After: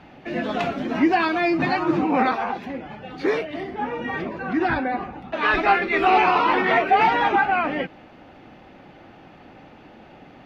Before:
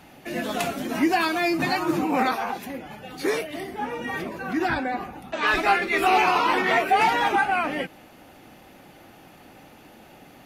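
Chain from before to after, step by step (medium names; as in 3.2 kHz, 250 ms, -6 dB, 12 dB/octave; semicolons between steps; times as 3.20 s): distance through air 230 m; trim +3.5 dB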